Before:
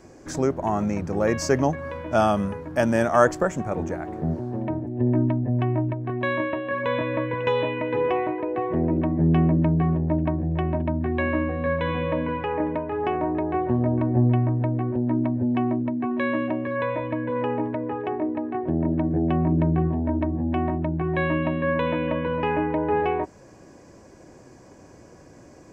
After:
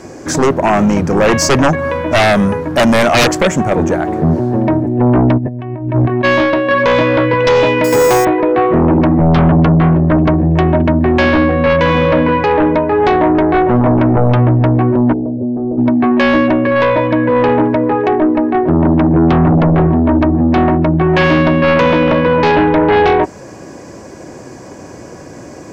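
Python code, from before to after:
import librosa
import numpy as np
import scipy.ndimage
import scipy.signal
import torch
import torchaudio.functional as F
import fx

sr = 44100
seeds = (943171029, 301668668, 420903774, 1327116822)

y = fx.highpass(x, sr, hz=97.0, slope=6)
y = fx.over_compress(y, sr, threshold_db=-32.0, ratio=-0.5, at=(5.37, 6.23), fade=0.02)
y = fx.fold_sine(y, sr, drive_db=16, ceiling_db=-3.0)
y = fx.resample_bad(y, sr, factor=6, down='none', up='hold', at=(7.84, 8.25))
y = fx.ladder_lowpass(y, sr, hz=570.0, resonance_pct=55, at=(15.12, 15.77), fade=0.02)
y = y * librosa.db_to_amplitude(-3.0)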